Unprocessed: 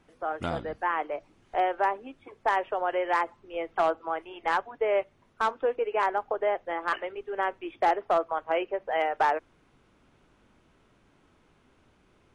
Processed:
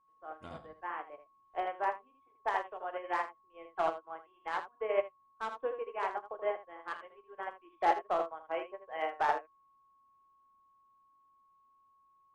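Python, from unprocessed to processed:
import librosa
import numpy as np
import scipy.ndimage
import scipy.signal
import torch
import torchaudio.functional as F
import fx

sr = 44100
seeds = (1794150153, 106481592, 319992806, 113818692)

y = x + 10.0 ** (-41.0 / 20.0) * np.sin(2.0 * np.pi * 1100.0 * np.arange(len(x)) / sr)
y = fx.room_early_taps(y, sr, ms=(32, 80), db=(-9.0, -4.5))
y = fx.upward_expand(y, sr, threshold_db=-36.0, expansion=2.5)
y = F.gain(torch.from_numpy(y), -3.5).numpy()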